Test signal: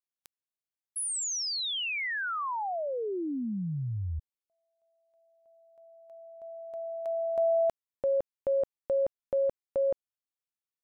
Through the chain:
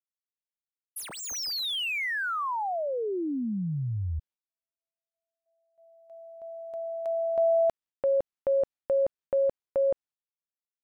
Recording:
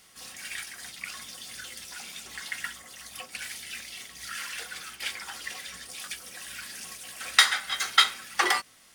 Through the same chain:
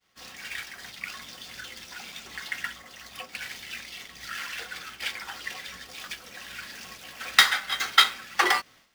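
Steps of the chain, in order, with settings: median filter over 5 samples; expander -51 dBFS; gain +2.5 dB

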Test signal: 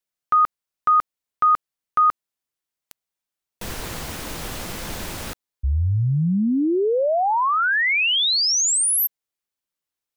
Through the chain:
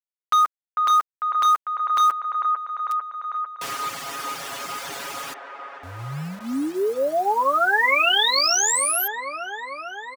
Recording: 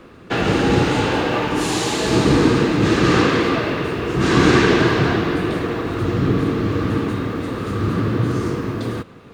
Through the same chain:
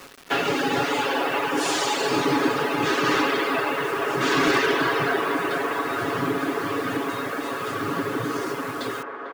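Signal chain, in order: weighting filter A; reverb removal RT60 1.5 s; notch 4000 Hz, Q 21; dynamic EQ 360 Hz, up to +3 dB, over -34 dBFS, Q 1.5; comb 7.2 ms, depth 82%; in parallel at +1.5 dB: compressor 16:1, threshold -26 dBFS; on the sum: wavefolder -7 dBFS; bit-crush 6-bit; band-limited delay 0.448 s, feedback 73%, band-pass 880 Hz, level -4 dB; gain -6 dB

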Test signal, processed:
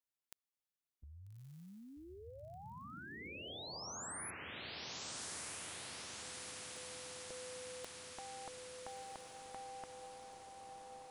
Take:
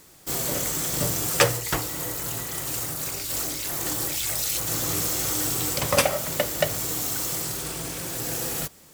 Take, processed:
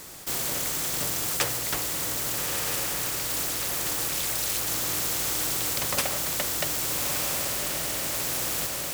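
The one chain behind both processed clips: diffused feedback echo 1.274 s, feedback 50%, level -5 dB; spectral compressor 2:1; gain -6.5 dB

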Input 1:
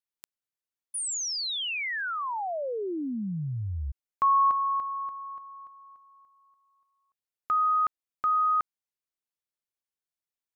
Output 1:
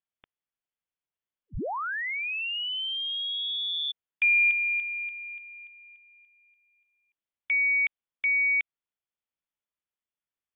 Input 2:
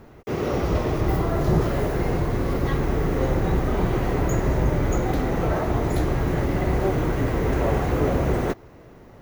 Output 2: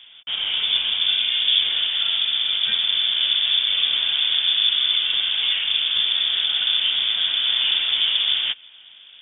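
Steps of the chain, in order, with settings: inverted band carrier 3500 Hz

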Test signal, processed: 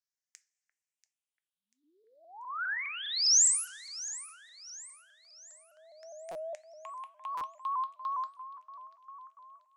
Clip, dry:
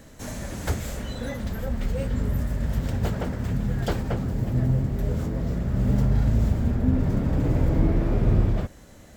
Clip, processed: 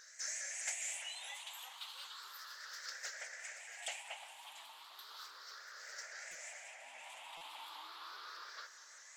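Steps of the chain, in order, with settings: moving spectral ripple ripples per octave 0.56, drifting +0.34 Hz, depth 17 dB; LPF 5100 Hz 12 dB/oct; differentiator; on a send: echo with dull and thin repeats by turns 0.344 s, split 2000 Hz, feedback 66%, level -13 dB; on the sum: two-slope reverb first 0.3 s, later 2.1 s, from -22 dB, DRR 11 dB; dynamic EQ 1300 Hz, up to -6 dB, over -50 dBFS, Q 0.96; HPF 790 Hz 24 dB/oct; stuck buffer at 6.31/7.37, samples 256, times 6; shaped vibrato saw up 4.9 Hz, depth 100 cents; gain +3 dB

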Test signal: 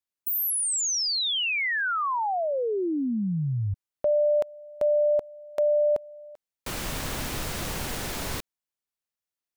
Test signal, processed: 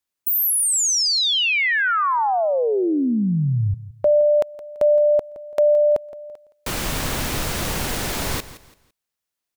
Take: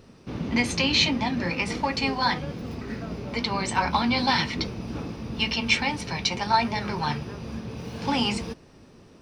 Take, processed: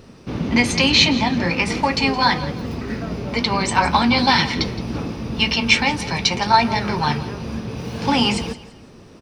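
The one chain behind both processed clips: feedback echo 0.168 s, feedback 30%, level -16 dB; gain +7 dB

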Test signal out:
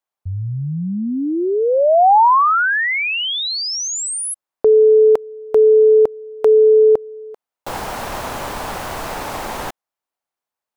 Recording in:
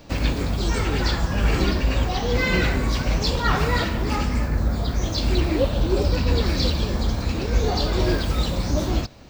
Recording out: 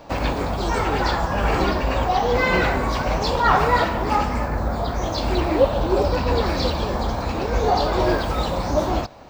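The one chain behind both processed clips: bell 830 Hz +14 dB 1.9 oct; gain -3.5 dB

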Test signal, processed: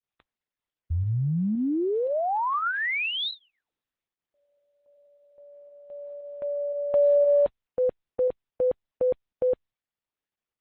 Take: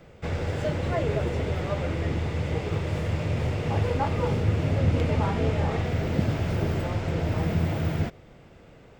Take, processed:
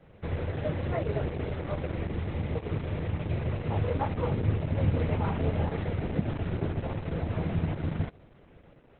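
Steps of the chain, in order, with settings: in parallel at -2.5 dB: pump 116 bpm, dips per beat 1, -17 dB, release 68 ms; on the sum: air absorption 160 m; gain -7 dB; Opus 8 kbps 48000 Hz

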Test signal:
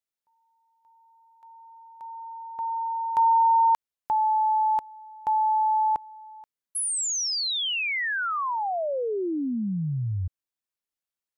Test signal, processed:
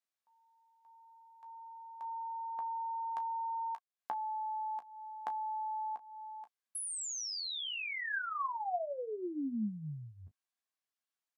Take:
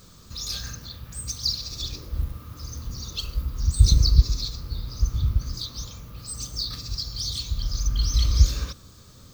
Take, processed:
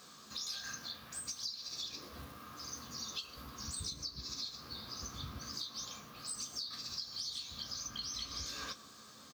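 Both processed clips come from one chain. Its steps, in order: weighting filter A; compressor 10:1, threshold -36 dBFS; small resonant body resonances 230/720/1100/1600 Hz, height 7 dB, ringing for 30 ms; on a send: early reflections 14 ms -7 dB, 33 ms -14 dB; on the sum: gain -3.5 dB

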